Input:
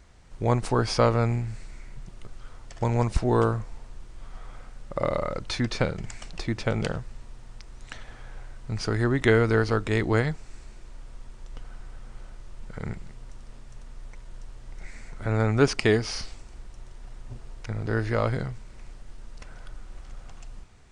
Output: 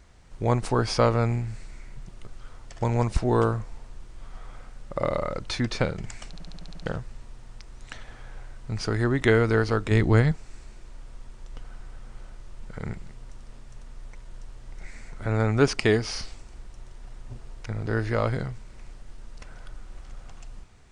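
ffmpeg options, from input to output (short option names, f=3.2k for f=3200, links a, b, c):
-filter_complex "[0:a]asettb=1/sr,asplit=3[a][b][c];[a]atrim=end=9.914[d];[b]atrim=start=9.91:end=10.32,asetpts=PTS-STARTPTS,afade=t=in:d=0.004:c=qsin,afade=t=out:st=0.406:d=0.004:c=qsin,bass=f=250:g=7,treble=f=4k:g=0[e];[c]atrim=start=10.316[f];[d][e]acrossfade=d=0.004:c1=hsin:c2=qsin[g];[g][f]acrossfade=d=0.004:c1=qsin:c2=hsin,asplit=9[h][i][j][k][l][m][n][o][p];[h]atrim=end=6.372[q];[i]atrim=start=6.298:end=6.372[r];[j]atrim=start=6.298:end=6.372[s];[k]atrim=start=6.298:end=6.372[t];[l]atrim=start=6.298:end=6.372[u];[m]atrim=start=6.298:end=6.372[v];[n]atrim=start=6.298:end=6.372[w];[o]atrim=start=6.298:end=6.372[x];[p]atrim=start=6.858[y];[q][r]acrossfade=d=0.004:c1=hsin:c2=hsin[z];[z][s]acrossfade=d=0.004:c1=hsin:c2=hsin[aa];[aa][t]acrossfade=d=0.004:c1=hsin:c2=hsin[ab];[ab][u]acrossfade=d=0.004:c1=hsin:c2=hsin[ac];[ac][v]acrossfade=d=0.004:c1=hsin:c2=hsin[ad];[ad][w]acrossfade=d=0.004:c1=hsin:c2=hsin[ae];[ae][x]acrossfade=d=0.004:c1=hsin:c2=hsin[af];[af][y]acrossfade=d=0.004:c1=hsin:c2=hsin"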